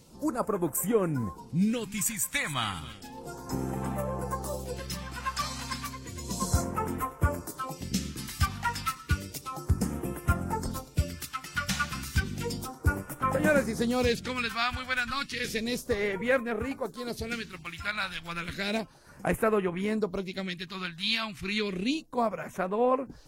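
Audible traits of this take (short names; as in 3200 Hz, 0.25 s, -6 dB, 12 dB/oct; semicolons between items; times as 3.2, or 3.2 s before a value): phasing stages 2, 0.32 Hz, lowest notch 400–4300 Hz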